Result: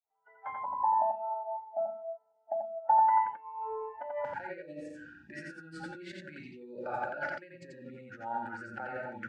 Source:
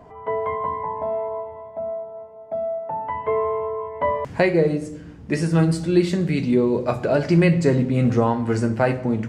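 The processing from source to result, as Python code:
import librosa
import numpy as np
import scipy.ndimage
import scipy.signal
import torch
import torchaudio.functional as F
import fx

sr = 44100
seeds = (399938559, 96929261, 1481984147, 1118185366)

y = fx.fade_in_head(x, sr, length_s=0.77)
y = fx.over_compress(y, sr, threshold_db=-27.0, ratio=-1.0)
y = fx.noise_reduce_blind(y, sr, reduce_db=26)
y = fx.double_bandpass(y, sr, hz=1100.0, octaves=0.74)
y = y + 10.0 ** (-3.0 / 20.0) * np.pad(y, (int(87 * sr / 1000.0), 0))[:len(y)]
y = F.gain(torch.from_numpy(y), 3.0).numpy()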